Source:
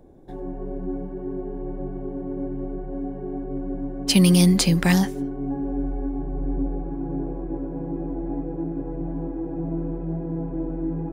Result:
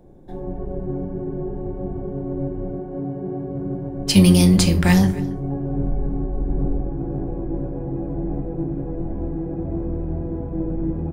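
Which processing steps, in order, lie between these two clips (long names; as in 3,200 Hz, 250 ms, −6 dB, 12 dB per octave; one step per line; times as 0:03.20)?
sub-octave generator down 1 octave, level −2 dB
0:02.71–0:03.96: high-pass filter 180 Hz → 53 Hz 12 dB per octave
slap from a distant wall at 47 metres, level −19 dB
rectangular room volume 320 cubic metres, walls furnished, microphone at 0.89 metres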